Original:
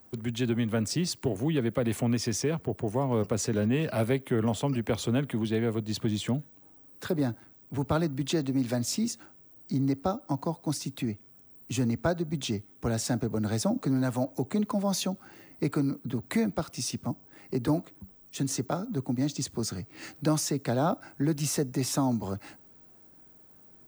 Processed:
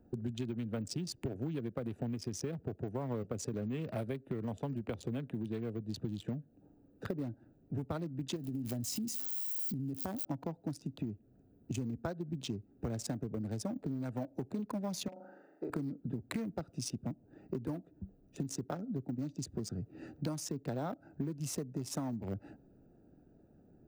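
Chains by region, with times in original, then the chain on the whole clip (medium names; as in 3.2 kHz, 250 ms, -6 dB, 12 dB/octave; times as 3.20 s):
8.36–10.25 s: zero-crossing glitches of -28 dBFS + compression 5:1, threshold -28 dBFS + comb 1 ms, depth 32%
15.08–15.70 s: high-pass 620 Hz + resonant high shelf 1.9 kHz -7 dB, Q 1.5 + flutter echo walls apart 7 m, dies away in 0.75 s
whole clip: local Wiener filter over 41 samples; compression 10:1, threshold -37 dBFS; trim +2.5 dB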